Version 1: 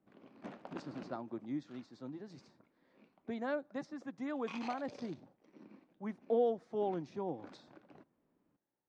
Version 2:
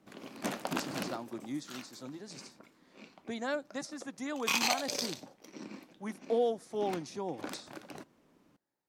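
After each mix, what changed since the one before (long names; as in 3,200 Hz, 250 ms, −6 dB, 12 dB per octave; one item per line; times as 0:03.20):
background +10.0 dB
master: remove head-to-tape spacing loss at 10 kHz 32 dB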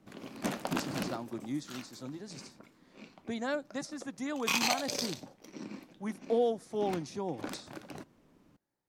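master: add low-shelf EQ 130 Hz +11.5 dB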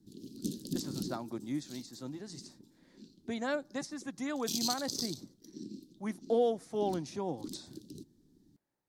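background: add elliptic band-stop filter 360–4,000 Hz, stop band 40 dB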